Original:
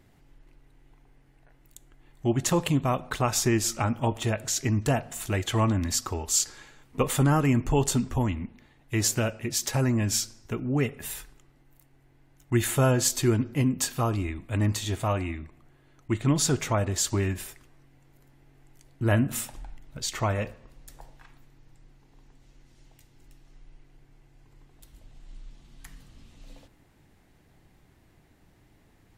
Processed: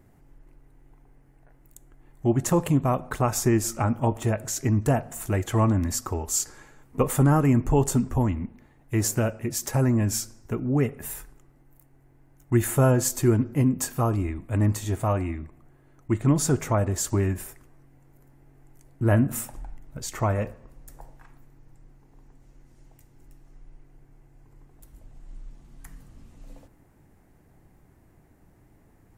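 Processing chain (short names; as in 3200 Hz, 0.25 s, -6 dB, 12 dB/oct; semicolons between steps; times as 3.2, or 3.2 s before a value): bell 3600 Hz -13 dB 1.5 oct; gain +3 dB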